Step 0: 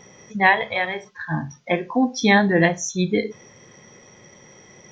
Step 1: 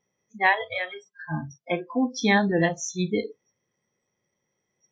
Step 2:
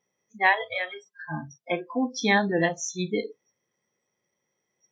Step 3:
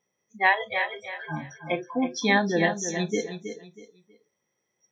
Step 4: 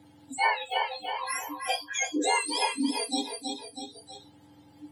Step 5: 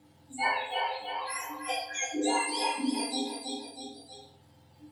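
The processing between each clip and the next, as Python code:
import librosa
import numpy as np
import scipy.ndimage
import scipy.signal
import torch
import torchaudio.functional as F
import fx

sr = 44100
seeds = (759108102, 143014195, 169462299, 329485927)

y1 = fx.noise_reduce_blind(x, sr, reduce_db=26)
y1 = y1 * 10.0 ** (-4.5 / 20.0)
y2 = fx.low_shelf(y1, sr, hz=150.0, db=-10.0)
y3 = fx.echo_feedback(y2, sr, ms=321, feedback_pct=28, wet_db=-9)
y4 = fx.octave_mirror(y3, sr, pivot_hz=1300.0)
y4 = fx.band_squash(y4, sr, depth_pct=70)
y5 = fx.dmg_crackle(y4, sr, seeds[0], per_s=220.0, level_db=-54.0)
y5 = fx.room_shoebox(y5, sr, seeds[1], volume_m3=130.0, walls='mixed', distance_m=1.0)
y5 = y5 * 10.0 ** (-6.0 / 20.0)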